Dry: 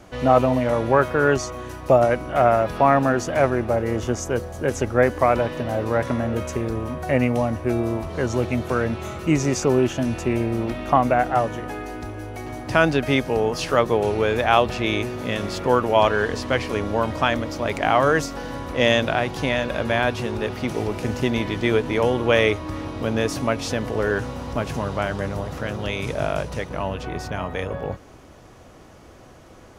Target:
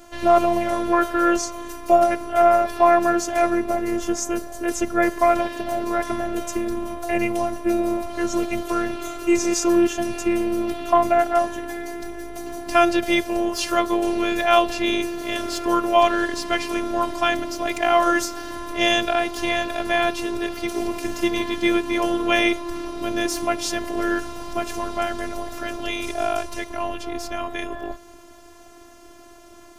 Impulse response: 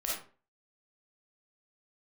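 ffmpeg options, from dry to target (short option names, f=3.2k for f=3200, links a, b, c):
-filter_complex "[0:a]asplit=2[a][b];[1:a]atrim=start_sample=2205[c];[b][c]afir=irnorm=-1:irlink=0,volume=-24.5dB[d];[a][d]amix=inputs=2:normalize=0,afftfilt=real='hypot(re,im)*cos(PI*b)':imag='0':win_size=512:overlap=0.75,highshelf=f=6.6k:g=9.5,volume=3dB"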